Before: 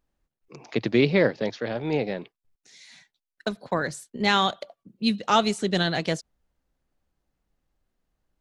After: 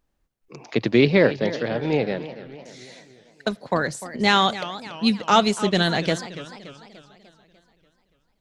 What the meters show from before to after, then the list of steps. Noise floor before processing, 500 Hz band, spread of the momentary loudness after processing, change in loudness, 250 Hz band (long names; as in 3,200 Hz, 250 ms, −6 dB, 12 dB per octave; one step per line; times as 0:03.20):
below −85 dBFS, +3.5 dB, 19 LU, +3.5 dB, +3.5 dB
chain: feedback echo with a swinging delay time 292 ms, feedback 53%, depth 204 cents, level −14.5 dB
level +3.5 dB